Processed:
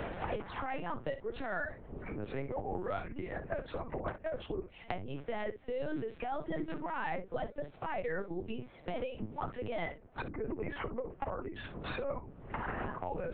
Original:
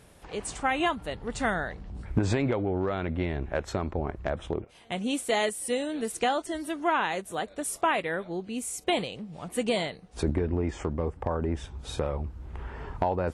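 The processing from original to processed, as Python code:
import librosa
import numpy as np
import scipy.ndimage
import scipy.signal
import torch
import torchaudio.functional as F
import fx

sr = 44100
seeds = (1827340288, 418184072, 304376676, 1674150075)

y = fx.octave_divider(x, sr, octaves=1, level_db=3.0)
y = fx.dereverb_blind(y, sr, rt60_s=2.0)
y = fx.spec_box(y, sr, start_s=2.39, length_s=0.36, low_hz=470.0, high_hz=1200.0, gain_db=7)
y = fx.over_compress(y, sr, threshold_db=-34.0, ratio=-1.0)
y = np.clip(10.0 ** (22.0 / 20.0) * y, -1.0, 1.0) / 10.0 ** (22.0 / 20.0)
y = fx.bandpass_edges(y, sr, low_hz=270.0, high_hz=2200.0)
y = fx.air_absorb(y, sr, metres=77.0)
y = fx.room_early_taps(y, sr, ms=(22, 58), db=(-12.5, -12.5))
y = fx.lpc_vocoder(y, sr, seeds[0], excitation='pitch_kept', order=8)
y = fx.band_squash(y, sr, depth_pct=100)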